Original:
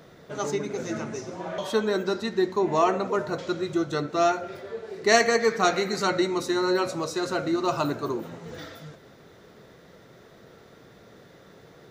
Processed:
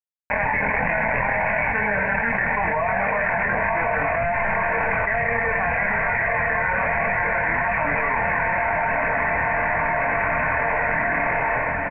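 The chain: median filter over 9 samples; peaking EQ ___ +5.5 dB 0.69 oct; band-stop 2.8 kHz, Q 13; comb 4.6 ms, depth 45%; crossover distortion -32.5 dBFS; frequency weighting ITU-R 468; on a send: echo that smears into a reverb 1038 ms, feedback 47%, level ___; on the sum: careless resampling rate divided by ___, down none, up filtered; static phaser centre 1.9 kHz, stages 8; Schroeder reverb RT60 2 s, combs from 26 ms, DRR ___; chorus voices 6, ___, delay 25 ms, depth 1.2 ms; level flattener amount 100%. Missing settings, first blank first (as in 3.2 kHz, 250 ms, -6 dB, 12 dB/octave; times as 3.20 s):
290 Hz, -9 dB, 8×, 18.5 dB, 0.66 Hz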